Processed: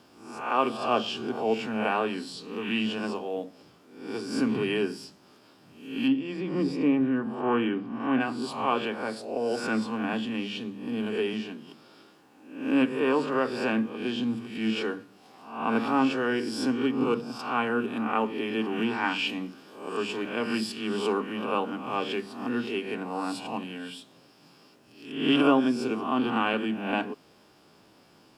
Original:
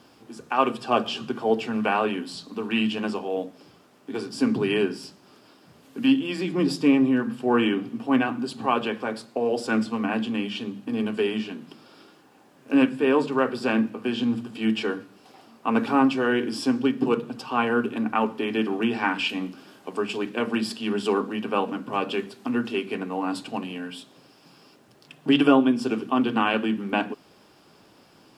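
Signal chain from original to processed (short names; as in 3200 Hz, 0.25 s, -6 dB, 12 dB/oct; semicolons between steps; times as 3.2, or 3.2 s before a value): spectral swells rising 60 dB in 0.62 s; 6.07–8.19 LPF 1300 Hz -> 2200 Hz 6 dB/oct; gain -5 dB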